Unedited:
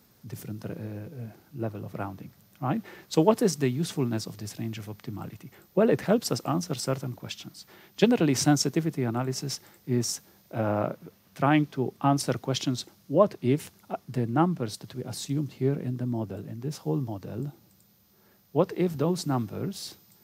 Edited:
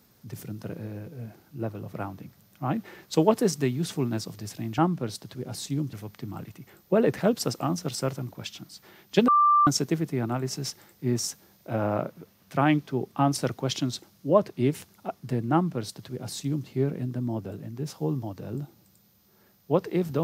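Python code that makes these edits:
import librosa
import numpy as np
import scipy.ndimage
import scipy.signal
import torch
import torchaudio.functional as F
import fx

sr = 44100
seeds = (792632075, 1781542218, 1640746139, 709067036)

y = fx.edit(x, sr, fx.bleep(start_s=8.13, length_s=0.39, hz=1180.0, db=-16.0),
    fx.duplicate(start_s=14.37, length_s=1.15, to_s=4.78), tone=tone)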